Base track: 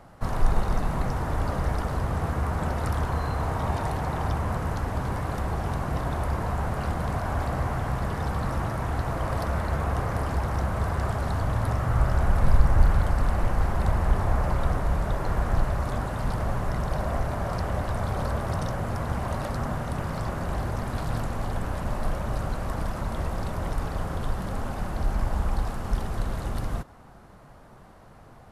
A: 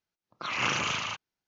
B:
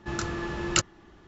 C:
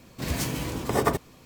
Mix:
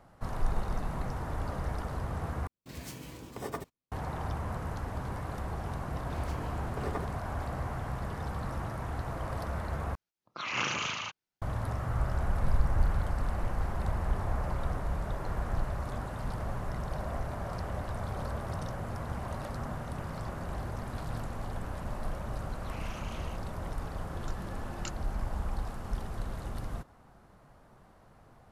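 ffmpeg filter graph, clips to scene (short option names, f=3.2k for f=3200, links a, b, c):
-filter_complex "[3:a]asplit=2[a][b];[1:a]asplit=2[c][d];[0:a]volume=-8dB[e];[a]agate=range=-30dB:threshold=-44dB:ratio=16:release=100:detection=peak[f];[b]aemphasis=mode=reproduction:type=75kf[g];[d]asoftclip=type=tanh:threshold=-24.5dB[h];[e]asplit=3[i][j][k];[i]atrim=end=2.474[l];[f]atrim=end=1.45,asetpts=PTS-STARTPTS,volume=-14.5dB[m];[j]atrim=start=3.916:end=9.954[n];[c]atrim=end=1.47,asetpts=PTS-STARTPTS,volume=-3.5dB[o];[k]atrim=start=11.416[p];[g]atrim=end=1.45,asetpts=PTS-STARTPTS,volume=-13dB,afade=t=in:d=0.004:c=hsin,afade=t=out:st=1.446:d=0.004:c=hsin,adelay=5880[q];[h]atrim=end=1.47,asetpts=PTS-STARTPTS,volume=-17.5dB,afade=t=in:d=0.004:c=hsin,afade=t=out:st=1.466:d=0.004:c=hsin,adelay=22210[r];[2:a]atrim=end=1.27,asetpts=PTS-STARTPTS,volume=-18dB,afade=t=in:d=0.004:c=hsin,afade=t=out:st=1.266:d=0.004:c=hsin,adelay=24090[s];[l][m]acrossfade=d=0.004:c1=hsin:c2=hsin[t];[t][n]acrossfade=d=0.004:c1=hsin:c2=hsin[u];[u][o]acrossfade=d=0.004:c1=hsin:c2=hsin[v];[v][p]acrossfade=d=0.004:c1=hsin:c2=hsin[w];[w][q][r][s]amix=inputs=4:normalize=0"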